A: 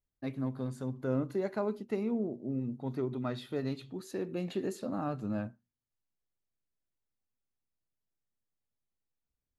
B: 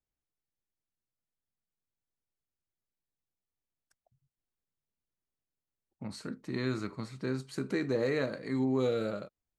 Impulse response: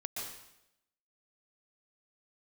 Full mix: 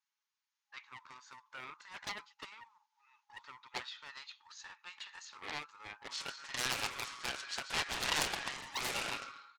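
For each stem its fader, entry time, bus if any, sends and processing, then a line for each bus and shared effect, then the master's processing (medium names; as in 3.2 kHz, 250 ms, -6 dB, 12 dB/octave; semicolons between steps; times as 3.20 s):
+2.0 dB, 0.50 s, no send, none
+2.5 dB, 0.00 s, send -5 dB, comb 7.3 ms, depth 82%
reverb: on, RT60 0.85 s, pre-delay 114 ms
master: FFT band-pass 820–7000 Hz; loudspeaker Doppler distortion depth 0.94 ms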